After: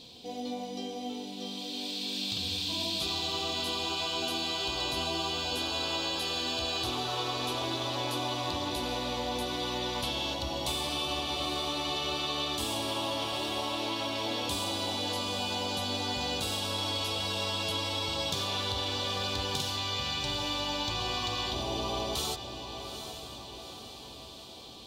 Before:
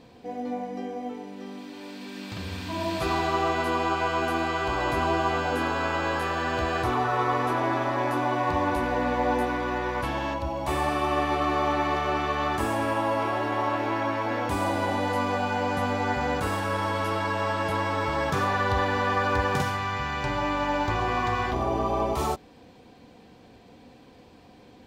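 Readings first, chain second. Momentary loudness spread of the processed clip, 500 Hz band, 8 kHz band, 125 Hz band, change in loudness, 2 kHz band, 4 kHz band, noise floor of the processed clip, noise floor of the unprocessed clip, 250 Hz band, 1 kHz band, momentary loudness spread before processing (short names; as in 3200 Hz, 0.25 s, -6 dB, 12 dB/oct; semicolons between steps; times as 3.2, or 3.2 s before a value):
8 LU, -8.5 dB, +5.5 dB, -8.0 dB, -5.0 dB, -9.5 dB, +9.0 dB, -46 dBFS, -52 dBFS, -7.5 dB, -10.5 dB, 8 LU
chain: resonant high shelf 2500 Hz +12.5 dB, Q 3; compressor, threshold -26 dBFS, peak gain reduction 9 dB; on a send: diffused feedback echo 0.843 s, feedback 57%, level -9 dB; on the sum: gain -4 dB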